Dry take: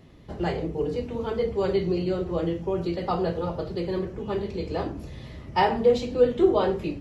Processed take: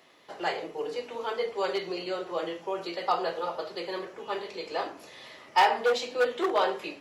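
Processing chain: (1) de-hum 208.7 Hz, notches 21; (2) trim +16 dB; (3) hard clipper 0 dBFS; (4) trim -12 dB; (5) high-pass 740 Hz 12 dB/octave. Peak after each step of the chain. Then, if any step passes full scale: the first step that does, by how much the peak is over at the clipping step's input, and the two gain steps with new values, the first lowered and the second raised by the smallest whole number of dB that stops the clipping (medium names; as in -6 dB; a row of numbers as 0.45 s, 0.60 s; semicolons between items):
-8.0 dBFS, +8.0 dBFS, 0.0 dBFS, -12.0 dBFS, -9.5 dBFS; step 2, 8.0 dB; step 2 +8 dB, step 4 -4 dB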